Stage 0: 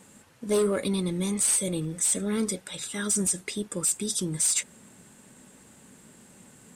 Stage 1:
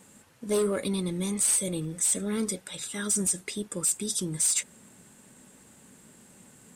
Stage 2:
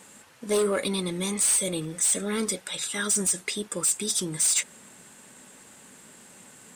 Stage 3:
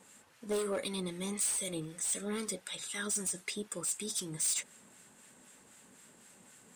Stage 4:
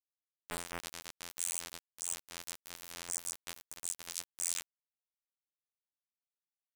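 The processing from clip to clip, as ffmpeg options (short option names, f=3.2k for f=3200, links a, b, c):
-af "highshelf=f=10k:g=4,volume=-2dB"
-filter_complex "[0:a]asplit=2[a][b];[b]highpass=f=720:p=1,volume=10dB,asoftclip=type=tanh:threshold=-15.5dB[c];[a][c]amix=inputs=2:normalize=0,lowpass=f=7.3k:p=1,volume=-6dB,volume=2dB"
-filter_complex "[0:a]acrossover=split=1100[a][b];[a]aeval=exprs='val(0)*(1-0.5/2+0.5/2*cos(2*PI*3.9*n/s))':c=same[c];[b]aeval=exprs='val(0)*(1-0.5/2-0.5/2*cos(2*PI*3.9*n/s))':c=same[d];[c][d]amix=inputs=2:normalize=0,asoftclip=type=hard:threshold=-22dB,volume=-6.5dB"
-af "afftfilt=real='hypot(re,im)*cos(PI*b)':imag='0':win_size=2048:overlap=0.75,aeval=exprs='val(0)*gte(abs(val(0)),0.0355)':c=same,volume=1dB"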